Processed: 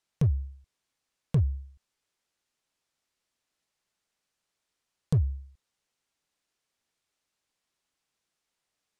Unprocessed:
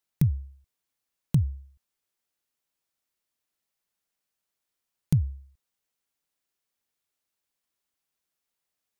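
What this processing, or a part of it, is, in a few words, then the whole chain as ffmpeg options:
limiter into clipper: -af "lowpass=8100,alimiter=limit=-17.5dB:level=0:latency=1:release=204,asoftclip=type=hard:threshold=-23dB,volume=4.5dB"

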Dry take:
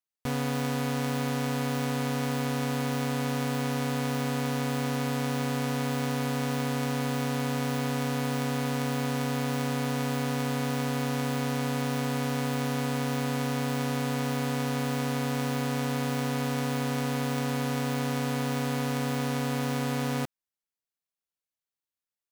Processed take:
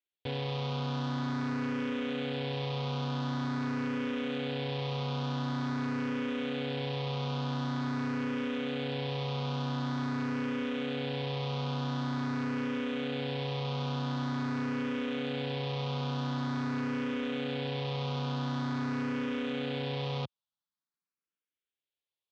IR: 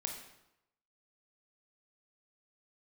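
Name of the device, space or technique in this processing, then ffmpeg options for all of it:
barber-pole phaser into a guitar amplifier: -filter_complex "[0:a]asplit=2[link_01][link_02];[link_02]afreqshift=0.46[link_03];[link_01][link_03]amix=inputs=2:normalize=1,asoftclip=type=tanh:threshold=-30.5dB,highpass=89,equalizer=frequency=690:width_type=q:width=4:gain=-6,equalizer=frequency=1900:width_type=q:width=4:gain=-4,equalizer=frequency=3400:width_type=q:width=4:gain=5,lowpass=frequency=4300:width=0.5412,lowpass=frequency=4300:width=1.3066,volume=2.5dB"

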